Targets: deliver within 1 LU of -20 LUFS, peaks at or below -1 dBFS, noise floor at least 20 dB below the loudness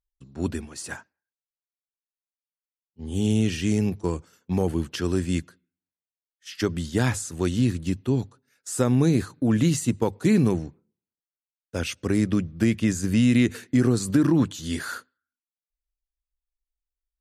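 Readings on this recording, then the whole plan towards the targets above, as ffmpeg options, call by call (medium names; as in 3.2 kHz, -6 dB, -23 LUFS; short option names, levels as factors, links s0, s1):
loudness -24.5 LUFS; peak level -8.0 dBFS; loudness target -20.0 LUFS
-> -af "volume=1.68"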